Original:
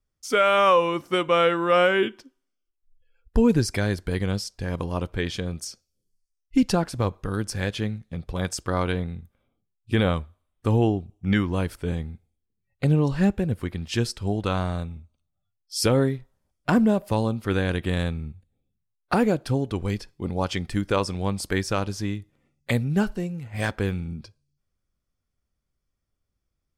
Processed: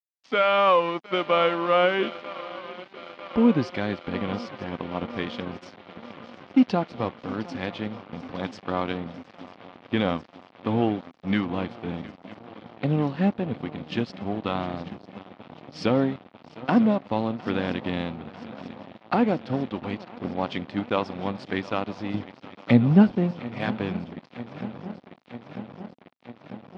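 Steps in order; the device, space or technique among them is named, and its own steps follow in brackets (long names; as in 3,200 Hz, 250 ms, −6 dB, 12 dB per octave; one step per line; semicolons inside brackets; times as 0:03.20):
0:22.14–0:23.31: low-shelf EQ 460 Hz +11 dB
feedback echo with a long and a short gap by turns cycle 946 ms, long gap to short 3 to 1, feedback 78%, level −16 dB
blown loudspeaker (dead-zone distortion −35 dBFS; loudspeaker in its box 170–4,000 Hz, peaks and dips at 250 Hz +4 dB, 420 Hz −4 dB, 740 Hz +3 dB, 1,600 Hz −4 dB)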